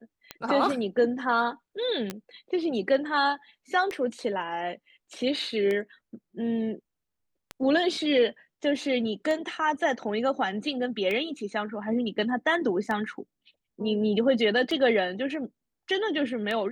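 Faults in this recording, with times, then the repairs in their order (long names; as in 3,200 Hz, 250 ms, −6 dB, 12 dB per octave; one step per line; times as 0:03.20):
scratch tick 33 1/3 rpm −18 dBFS
0:02.10: click −17 dBFS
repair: click removal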